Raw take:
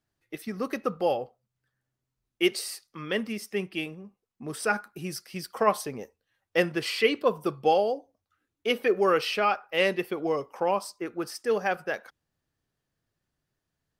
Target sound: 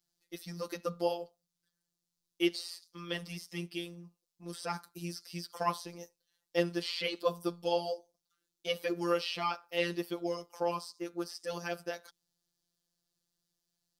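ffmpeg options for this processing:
-filter_complex "[0:a]highshelf=f=3.1k:t=q:w=1.5:g=11,afftfilt=real='hypot(re,im)*cos(PI*b)':imag='0':win_size=1024:overlap=0.75,acrossover=split=3400[a][b];[b]acompressor=threshold=-40dB:ratio=4:attack=1:release=60[c];[a][c]amix=inputs=2:normalize=0,volume=-4dB"

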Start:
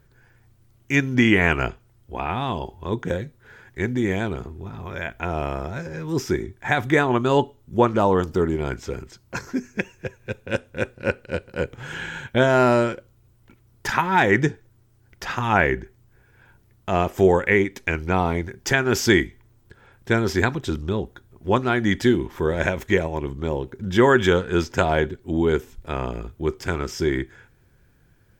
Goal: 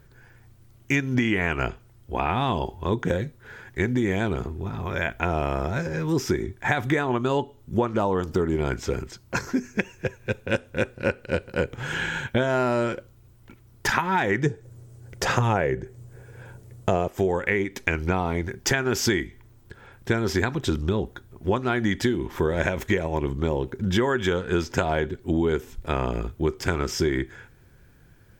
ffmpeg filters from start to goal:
-filter_complex "[0:a]asplit=3[a][b][c];[a]afade=t=out:st=14.45:d=0.02[d];[b]equalizer=f=125:t=o:w=1:g=11,equalizer=f=500:t=o:w=1:g=12,equalizer=f=8k:t=o:w=1:g=9,afade=t=in:st=14.45:d=0.02,afade=t=out:st=17.07:d=0.02[e];[c]afade=t=in:st=17.07:d=0.02[f];[d][e][f]amix=inputs=3:normalize=0,acompressor=threshold=-23dB:ratio=12,volume=4dB"

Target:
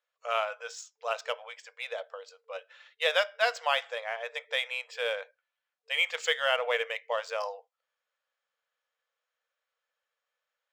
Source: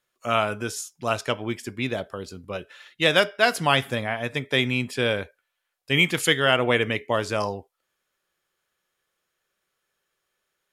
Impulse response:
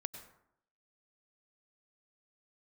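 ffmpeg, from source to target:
-af "afftfilt=real='re*between(b*sr/4096,450,8200)':imag='im*between(b*sr/4096,450,8200)':win_size=4096:overlap=0.75,adynamicsmooth=sensitivity=5:basefreq=6k,volume=-6.5dB"

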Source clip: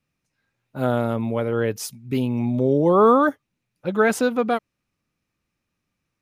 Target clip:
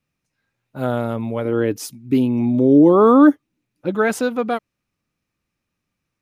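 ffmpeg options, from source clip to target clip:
-filter_complex "[0:a]asettb=1/sr,asplit=3[a][b][c];[a]atrim=end=1.454[d];[b]atrim=start=1.45:end=3.95,asetpts=PTS-STARTPTS,afade=t=in:d=0.004:c=qsin,afade=t=out:st=2.496:d=0.004:c=qsin,equalizer=f=300:w=2.9:g=13.5[e];[c]atrim=start=3.946[f];[d][e]acrossfade=d=0.004:c1=hsin:c2=qsin[g];[g][f]acrossfade=d=0.004:c1=qsin:c2=hsin"

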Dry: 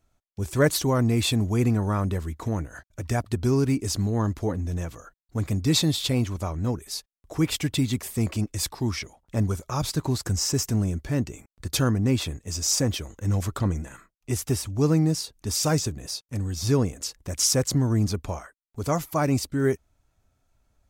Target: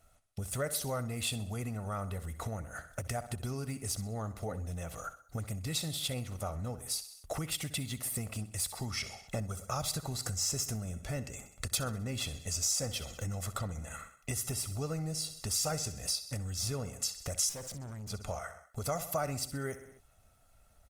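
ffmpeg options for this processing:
-filter_complex "[0:a]equalizer=f=10k:w=1.3:g=6,aecho=1:1:1.5:0.65,aecho=1:1:64|128|192|256:0.188|0.0885|0.0416|0.0196,acompressor=threshold=-37dB:ratio=5,lowshelf=f=290:g=-7.5,asettb=1/sr,asplit=3[a][b][c];[a]atrim=end=17.494[d];[b]atrim=start=17.49:end=18.1,asetpts=PTS-STARTPTS,afade=t=in:d=0.004:c=qsin,afade=t=out:st=0.606:d=0.004:c=qsin,aeval=exprs='(tanh(200*val(0)+0.35)-tanh(0.35))/200':c=same[e];[c]atrim=start=18.096[f];[d][e]acrossfade=d=0.004:c1=hsin:c2=qsin[g];[g][f]acrossfade=d=0.004:c1=qsin:c2=hsin,volume=6dB" -ar 48000 -c:a libopus -b:a 32k

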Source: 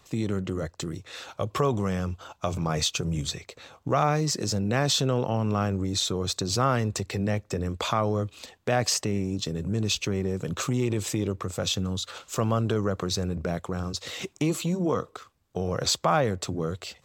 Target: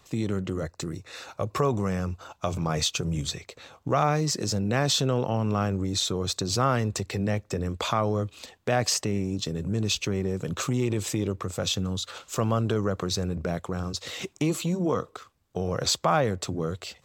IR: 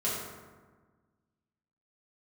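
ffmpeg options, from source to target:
-filter_complex "[0:a]asettb=1/sr,asplit=3[a][b][c];[a]atrim=end=0.634[d];[b]atrim=start=0.63:end=2.31,asetpts=PTS-STARTPTS,afade=t=in:d=0.004:c=qsin,afade=t=out:st=1.676:d=0.004:c=qsin,bandreject=f=3.2k:w=5.1[e];[c]atrim=start=2.306[f];[d][e]acrossfade=d=0.004:c1=hsin:c2=qsin[g];[g][f]acrossfade=d=0.004:c1=qsin:c2=hsin"

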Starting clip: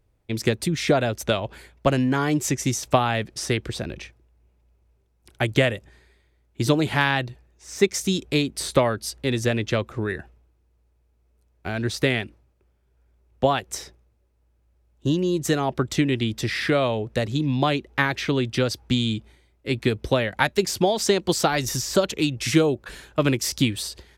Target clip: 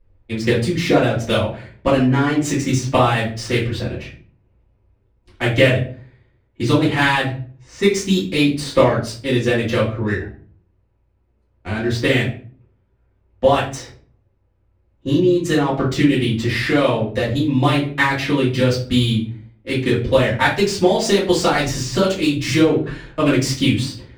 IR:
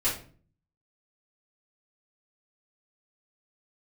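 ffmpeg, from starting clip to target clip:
-filter_complex "[0:a]adynamicsmooth=sensitivity=4:basefreq=3.1k[a];[1:a]atrim=start_sample=2205[b];[a][b]afir=irnorm=-1:irlink=0,volume=-3.5dB"

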